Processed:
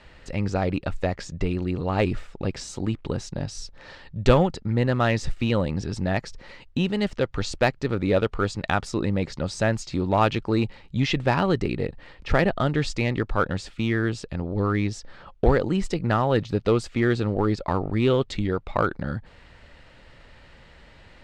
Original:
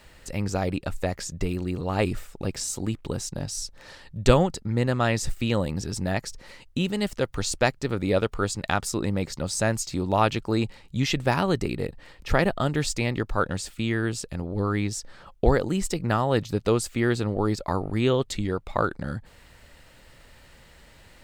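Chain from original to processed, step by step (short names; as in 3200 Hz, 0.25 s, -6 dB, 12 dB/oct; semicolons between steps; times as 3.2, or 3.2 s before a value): LPF 4000 Hz 12 dB/oct; in parallel at -6.5 dB: overloaded stage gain 19.5 dB; on the sum: gain -1 dB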